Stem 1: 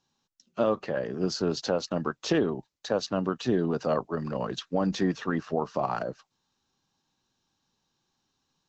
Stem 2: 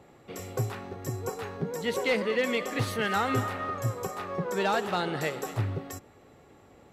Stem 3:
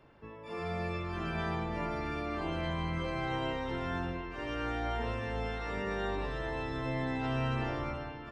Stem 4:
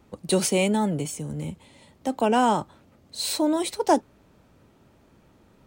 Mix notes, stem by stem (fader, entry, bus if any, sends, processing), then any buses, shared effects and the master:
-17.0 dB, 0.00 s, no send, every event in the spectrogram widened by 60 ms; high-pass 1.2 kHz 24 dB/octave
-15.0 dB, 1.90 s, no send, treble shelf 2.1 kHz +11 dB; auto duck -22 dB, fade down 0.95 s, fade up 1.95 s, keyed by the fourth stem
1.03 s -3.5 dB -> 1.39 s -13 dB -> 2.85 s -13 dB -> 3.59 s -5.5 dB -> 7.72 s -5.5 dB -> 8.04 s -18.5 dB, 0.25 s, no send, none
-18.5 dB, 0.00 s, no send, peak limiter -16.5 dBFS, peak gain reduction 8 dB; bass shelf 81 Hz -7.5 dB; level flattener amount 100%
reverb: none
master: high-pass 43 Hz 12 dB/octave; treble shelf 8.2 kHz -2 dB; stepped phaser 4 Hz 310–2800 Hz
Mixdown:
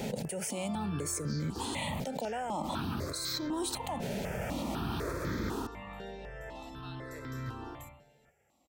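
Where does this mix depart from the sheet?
stem 3: entry 0.25 s -> 0.00 s; stem 4 -18.5 dB -> -10.5 dB

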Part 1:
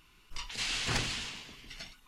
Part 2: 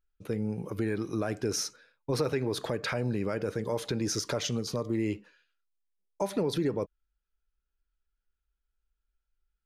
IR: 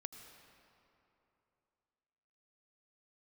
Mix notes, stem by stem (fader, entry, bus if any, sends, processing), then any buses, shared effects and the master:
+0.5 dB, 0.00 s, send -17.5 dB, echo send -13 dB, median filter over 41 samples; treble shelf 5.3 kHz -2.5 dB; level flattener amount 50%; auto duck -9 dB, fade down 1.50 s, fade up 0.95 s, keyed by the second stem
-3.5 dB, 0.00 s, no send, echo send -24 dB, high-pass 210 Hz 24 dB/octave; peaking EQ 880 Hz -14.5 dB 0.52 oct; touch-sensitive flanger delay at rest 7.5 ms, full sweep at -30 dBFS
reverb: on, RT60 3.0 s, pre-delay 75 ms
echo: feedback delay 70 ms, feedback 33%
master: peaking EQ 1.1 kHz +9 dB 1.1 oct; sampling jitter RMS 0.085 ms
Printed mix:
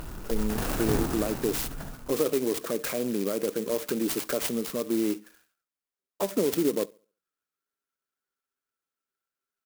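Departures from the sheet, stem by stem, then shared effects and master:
stem 1 +0.5 dB -> +11.0 dB; stem 2 -3.5 dB -> +5.0 dB

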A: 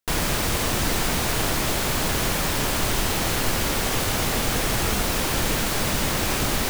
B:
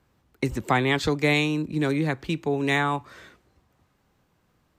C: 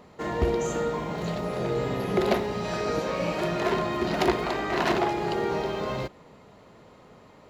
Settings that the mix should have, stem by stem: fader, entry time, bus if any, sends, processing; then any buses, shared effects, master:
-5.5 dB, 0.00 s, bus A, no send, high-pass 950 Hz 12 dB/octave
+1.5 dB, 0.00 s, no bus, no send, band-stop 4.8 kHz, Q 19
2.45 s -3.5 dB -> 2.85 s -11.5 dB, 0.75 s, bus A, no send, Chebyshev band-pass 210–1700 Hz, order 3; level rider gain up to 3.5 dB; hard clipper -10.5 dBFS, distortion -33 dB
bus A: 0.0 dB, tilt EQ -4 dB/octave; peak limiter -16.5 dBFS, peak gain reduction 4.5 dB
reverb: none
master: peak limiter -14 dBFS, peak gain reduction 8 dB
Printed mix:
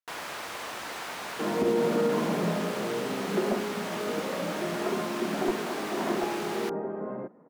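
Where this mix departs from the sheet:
stem B: muted; stem C: entry 0.75 s -> 1.20 s

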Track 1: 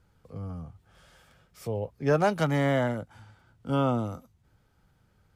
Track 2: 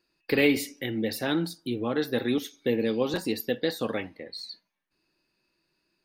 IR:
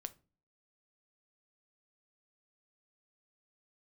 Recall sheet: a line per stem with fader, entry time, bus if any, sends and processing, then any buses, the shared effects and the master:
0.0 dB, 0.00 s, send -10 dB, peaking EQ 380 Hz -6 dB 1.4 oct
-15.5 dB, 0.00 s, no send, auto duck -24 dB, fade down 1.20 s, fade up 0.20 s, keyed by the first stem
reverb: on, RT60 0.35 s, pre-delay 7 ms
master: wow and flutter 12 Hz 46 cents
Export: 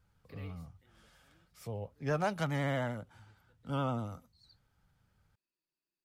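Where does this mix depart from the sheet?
stem 1 0.0 dB -> -7.5 dB; stem 2 -15.5 dB -> -22.5 dB

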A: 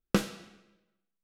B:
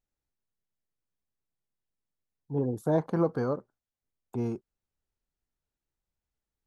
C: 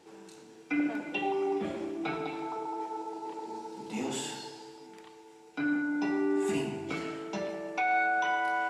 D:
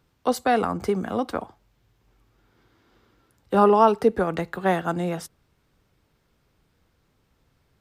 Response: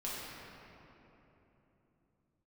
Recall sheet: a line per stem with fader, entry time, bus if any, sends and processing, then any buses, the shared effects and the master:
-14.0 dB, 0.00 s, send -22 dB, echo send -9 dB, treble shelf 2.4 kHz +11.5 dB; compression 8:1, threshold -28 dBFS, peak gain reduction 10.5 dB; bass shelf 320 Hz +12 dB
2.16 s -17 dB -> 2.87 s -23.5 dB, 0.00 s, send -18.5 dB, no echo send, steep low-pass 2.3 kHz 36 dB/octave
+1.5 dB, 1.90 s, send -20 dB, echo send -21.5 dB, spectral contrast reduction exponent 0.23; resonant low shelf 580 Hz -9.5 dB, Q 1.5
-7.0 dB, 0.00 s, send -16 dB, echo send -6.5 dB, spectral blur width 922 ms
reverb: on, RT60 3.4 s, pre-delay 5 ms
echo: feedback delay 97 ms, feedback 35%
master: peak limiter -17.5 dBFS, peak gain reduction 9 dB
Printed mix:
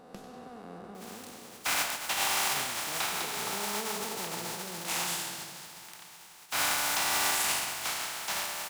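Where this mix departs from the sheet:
stem A -14.0 dB -> -20.5 dB; stem C: entry 1.90 s -> 0.95 s; stem D -7.0 dB -> -16.0 dB

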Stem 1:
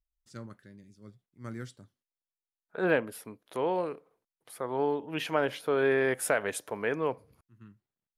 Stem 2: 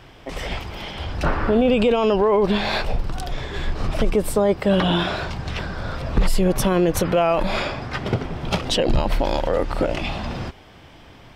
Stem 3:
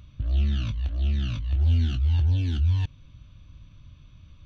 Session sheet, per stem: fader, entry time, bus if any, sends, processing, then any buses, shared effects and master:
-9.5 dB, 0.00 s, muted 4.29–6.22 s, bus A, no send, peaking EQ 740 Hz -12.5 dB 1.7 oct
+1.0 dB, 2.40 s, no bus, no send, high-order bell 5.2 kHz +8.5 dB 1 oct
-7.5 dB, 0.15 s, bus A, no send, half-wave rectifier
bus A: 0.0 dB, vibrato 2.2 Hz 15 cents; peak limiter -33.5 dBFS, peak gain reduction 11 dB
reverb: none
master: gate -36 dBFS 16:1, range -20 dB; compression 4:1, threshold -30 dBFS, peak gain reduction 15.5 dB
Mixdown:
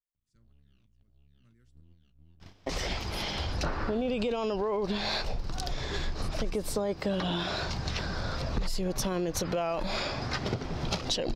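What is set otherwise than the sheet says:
stem 1 -9.5 dB -> -3.5 dB; stem 3 -7.5 dB -> -15.0 dB

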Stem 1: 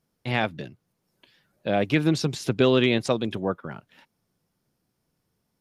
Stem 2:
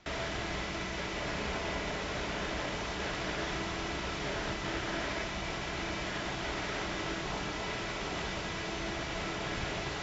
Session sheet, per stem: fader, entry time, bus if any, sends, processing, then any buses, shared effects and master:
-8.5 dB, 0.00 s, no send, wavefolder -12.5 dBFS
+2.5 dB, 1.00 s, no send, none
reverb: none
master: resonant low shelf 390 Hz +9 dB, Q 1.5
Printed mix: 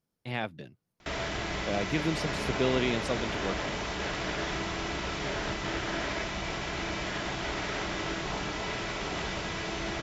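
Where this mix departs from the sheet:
stem 1: missing wavefolder -12.5 dBFS; master: missing resonant low shelf 390 Hz +9 dB, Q 1.5

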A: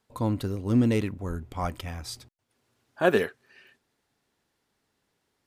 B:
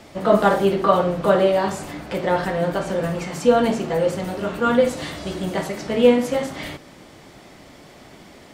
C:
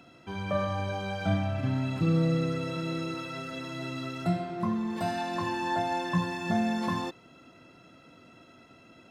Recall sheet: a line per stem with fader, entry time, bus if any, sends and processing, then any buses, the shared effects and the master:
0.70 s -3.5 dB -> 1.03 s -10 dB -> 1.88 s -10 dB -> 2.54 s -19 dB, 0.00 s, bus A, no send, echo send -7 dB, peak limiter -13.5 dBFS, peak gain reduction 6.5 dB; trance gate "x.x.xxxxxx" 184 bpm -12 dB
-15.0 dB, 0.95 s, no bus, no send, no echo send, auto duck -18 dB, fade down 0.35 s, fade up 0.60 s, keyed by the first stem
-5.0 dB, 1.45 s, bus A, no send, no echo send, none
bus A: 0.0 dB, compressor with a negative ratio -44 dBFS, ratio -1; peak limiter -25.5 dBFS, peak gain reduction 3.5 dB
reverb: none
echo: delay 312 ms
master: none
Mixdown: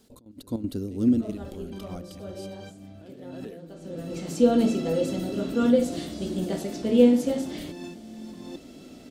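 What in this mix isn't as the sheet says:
stem A -3.5 dB -> +6.0 dB; stem B -15.0 dB -> -3.5 dB; master: extra graphic EQ 125/250/1000/2000 Hz -7/+7/-12/-9 dB

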